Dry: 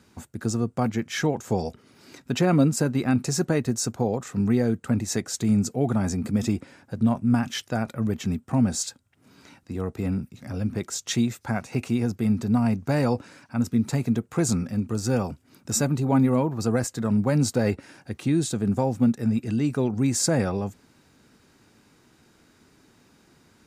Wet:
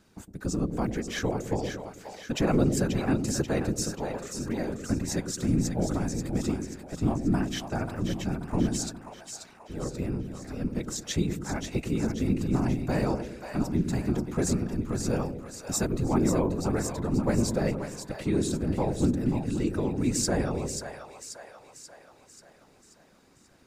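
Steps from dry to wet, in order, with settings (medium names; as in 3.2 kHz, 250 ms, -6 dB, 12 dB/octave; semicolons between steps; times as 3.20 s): whisper effect; 3.91–4.75 s: bass shelf 460 Hz -8 dB; two-band feedback delay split 560 Hz, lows 108 ms, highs 535 ms, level -7 dB; trim -4.5 dB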